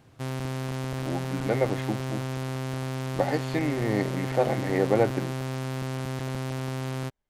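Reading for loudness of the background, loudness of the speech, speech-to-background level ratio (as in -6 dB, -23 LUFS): -32.5 LUFS, -28.5 LUFS, 4.0 dB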